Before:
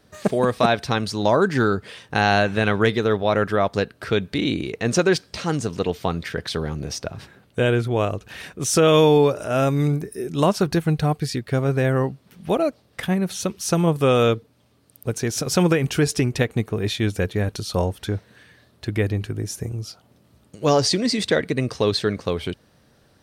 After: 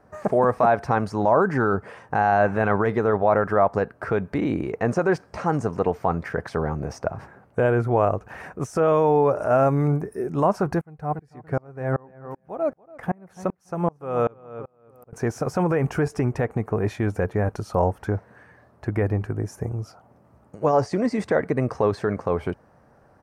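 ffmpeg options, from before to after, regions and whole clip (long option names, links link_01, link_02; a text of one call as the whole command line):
ffmpeg -i in.wav -filter_complex "[0:a]asettb=1/sr,asplit=3[link_01][link_02][link_03];[link_01]atrim=end=10.814[link_04];[link_02]atrim=start=10.81:end=15.13,asetpts=PTS-STARTPTS,afade=type=in:duration=0.004:curve=qsin,afade=type=out:start_time=4.316:duration=0.004:curve=qsin,asplit=2[link_05][link_06];[link_06]adelay=285,lowpass=frequency=3600:poles=1,volume=-12.5dB,asplit=2[link_07][link_08];[link_08]adelay=285,lowpass=frequency=3600:poles=1,volume=0.33,asplit=2[link_09][link_10];[link_10]adelay=285,lowpass=frequency=3600:poles=1,volume=0.33[link_11];[link_05][link_07][link_09][link_11]amix=inputs=4:normalize=0,atrim=end_sample=190512,aeval=exprs='val(0)*pow(10,-34*if(lt(mod(-2.6*n/s,1),2*abs(-2.6)/1000),1-mod(-2.6*n/s,1)/(2*abs(-2.6)/1000),(mod(-2.6*n/s,1)-2*abs(-2.6)/1000)/(1-2*abs(-2.6)/1000))/20)':channel_layout=same[link_12];[link_03]atrim=start=15.126[link_13];[link_04][link_12]acrossfade=duration=0.004:curve1=hsin:curve2=qsin[link_14];[link_14][link_13]acrossfade=duration=0.004:curve1=qsin:curve2=hsin,highshelf=frequency=4400:width_type=q:width=1.5:gain=7.5,alimiter=limit=-13dB:level=0:latency=1:release=39,firequalizer=gain_entry='entry(320,0);entry(790,9);entry(2500,-7);entry(3600,-21)':delay=0.05:min_phase=1" out.wav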